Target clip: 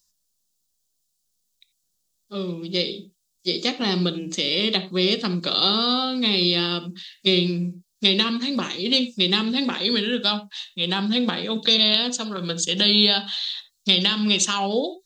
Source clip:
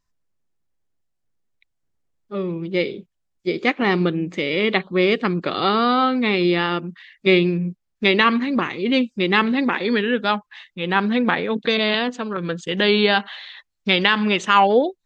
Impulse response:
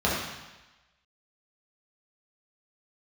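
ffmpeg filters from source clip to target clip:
-filter_complex "[0:a]acrossover=split=410[link_01][link_02];[link_02]acompressor=threshold=-22dB:ratio=3[link_03];[link_01][link_03]amix=inputs=2:normalize=0,aexciter=amount=13:drive=3.1:freq=3100,asplit=2[link_04][link_05];[1:a]atrim=start_sample=2205,afade=type=out:start_time=0.14:duration=0.01,atrim=end_sample=6615[link_06];[link_05][link_06]afir=irnorm=-1:irlink=0,volume=-21.5dB[link_07];[link_04][link_07]amix=inputs=2:normalize=0,volume=-6dB"

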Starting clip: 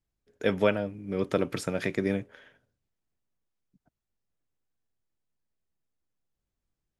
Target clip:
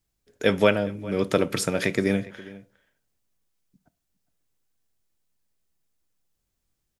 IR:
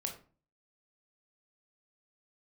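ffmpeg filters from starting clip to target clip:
-filter_complex "[0:a]highshelf=frequency=3400:gain=8,asplit=2[link_01][link_02];[link_02]adelay=408.2,volume=-19dB,highshelf=frequency=4000:gain=-9.18[link_03];[link_01][link_03]amix=inputs=2:normalize=0,asplit=2[link_04][link_05];[1:a]atrim=start_sample=2205[link_06];[link_05][link_06]afir=irnorm=-1:irlink=0,volume=-12.5dB[link_07];[link_04][link_07]amix=inputs=2:normalize=0,volume=3dB"

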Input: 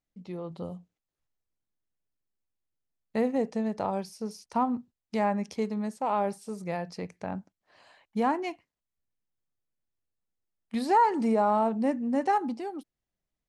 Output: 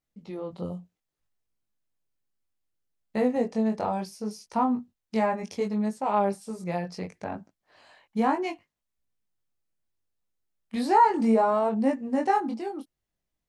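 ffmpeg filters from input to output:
ffmpeg -i in.wav -af "flanger=delay=18.5:depth=4.2:speed=0.67,volume=5dB" out.wav

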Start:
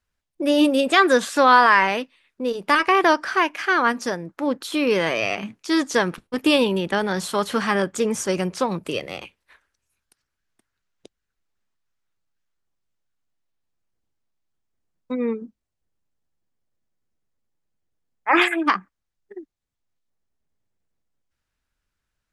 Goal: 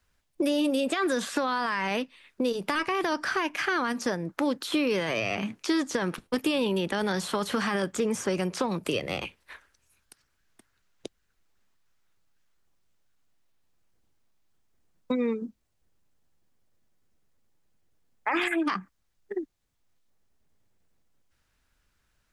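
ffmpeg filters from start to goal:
ffmpeg -i in.wav -filter_complex "[0:a]alimiter=limit=-13.5dB:level=0:latency=1:release=15,acrossover=split=220|3300[link_01][link_02][link_03];[link_01]acompressor=threshold=-44dB:ratio=4[link_04];[link_02]acompressor=threshold=-36dB:ratio=4[link_05];[link_03]acompressor=threshold=-48dB:ratio=4[link_06];[link_04][link_05][link_06]amix=inputs=3:normalize=0,volume=7.5dB" out.wav

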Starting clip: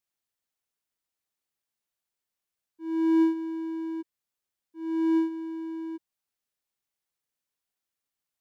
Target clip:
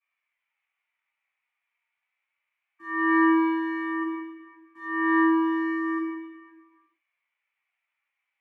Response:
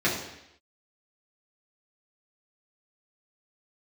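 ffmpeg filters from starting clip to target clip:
-filter_complex "[0:a]lowpass=frequency=2300:width_type=q:width=5.5,flanger=delay=1.7:depth=2.5:regen=-27:speed=0.29:shape=sinusoidal,acrossover=split=340|600|1400[link_01][link_02][link_03][link_04];[link_01]aeval=exprs='val(0)*sin(2*PI*1500*n/s)':channel_layout=same[link_05];[link_02]aeval=exprs='val(0)*gte(abs(val(0)),0.00106)':channel_layout=same[link_06];[link_05][link_06][link_03][link_04]amix=inputs=4:normalize=0[link_07];[1:a]atrim=start_sample=2205,asetrate=23373,aresample=44100[link_08];[link_07][link_08]afir=irnorm=-1:irlink=0,volume=-8dB"

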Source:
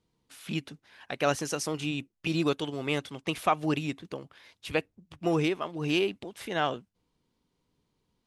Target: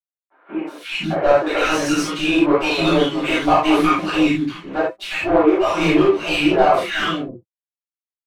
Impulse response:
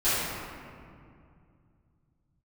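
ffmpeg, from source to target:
-filter_complex "[0:a]flanger=delay=6.1:depth=4.8:regen=-84:speed=0.36:shape=sinusoidal,aeval=exprs='sgn(val(0))*max(abs(val(0))-0.00224,0)':channel_layout=same,acrossover=split=300|1400[link_01][link_02][link_03];[link_03]adelay=360[link_04];[link_01]adelay=510[link_05];[link_05][link_02][link_04]amix=inputs=3:normalize=0,asplit=2[link_06][link_07];[link_07]highpass=frequency=720:poles=1,volume=23dB,asoftclip=type=tanh:threshold=-17.5dB[link_08];[link_06][link_08]amix=inputs=2:normalize=0,lowpass=frequency=1500:poles=1,volume=-6dB[link_09];[1:a]atrim=start_sample=2205,afade=type=out:start_time=0.14:duration=0.01,atrim=end_sample=6615,asetrate=39690,aresample=44100[link_10];[link_09][link_10]afir=irnorm=-1:irlink=0,volume=1dB"

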